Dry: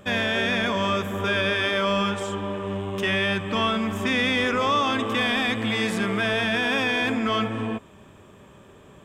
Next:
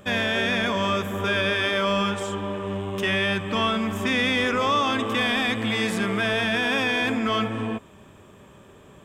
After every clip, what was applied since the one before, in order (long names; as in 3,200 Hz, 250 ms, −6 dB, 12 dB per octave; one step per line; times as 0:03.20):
high-shelf EQ 9,400 Hz +3.5 dB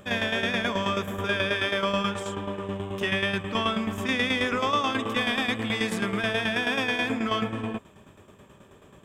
shaped tremolo saw down 9.3 Hz, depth 65%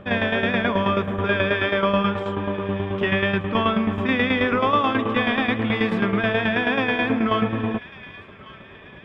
high-frequency loss of the air 380 metres
delay with a high-pass on its return 1,148 ms, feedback 49%, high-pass 1,500 Hz, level −16 dB
level +7.5 dB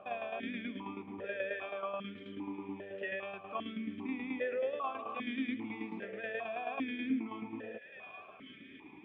downward compressor 2 to 1, threshold −36 dBFS, peak gain reduction 11.5 dB
formant filter that steps through the vowels 2.5 Hz
level +3 dB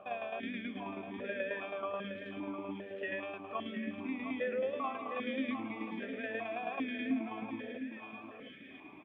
single-tap delay 708 ms −8.5 dB
on a send at −23 dB: convolution reverb RT60 1.0 s, pre-delay 3 ms